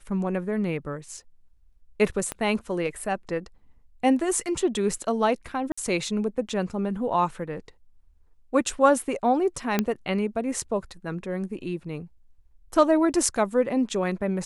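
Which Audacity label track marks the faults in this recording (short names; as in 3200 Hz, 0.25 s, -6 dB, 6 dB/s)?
2.320000	2.320000	pop -15 dBFS
5.720000	5.780000	gap 55 ms
9.790000	9.790000	pop -8 dBFS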